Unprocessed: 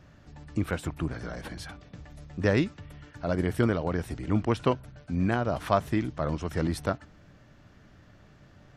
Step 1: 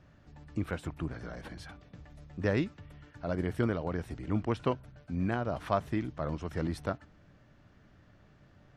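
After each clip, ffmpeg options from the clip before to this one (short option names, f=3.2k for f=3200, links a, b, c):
-af "highshelf=f=5.8k:g=-7.5,volume=-5dB"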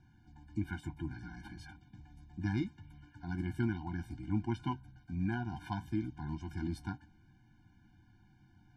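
-af "flanger=delay=8.6:depth=1.5:regen=-56:speed=1.1:shape=triangular,afftfilt=real='re*eq(mod(floor(b*sr/1024/350),2),0)':imag='im*eq(mod(floor(b*sr/1024/350),2),0)':win_size=1024:overlap=0.75,volume=1dB"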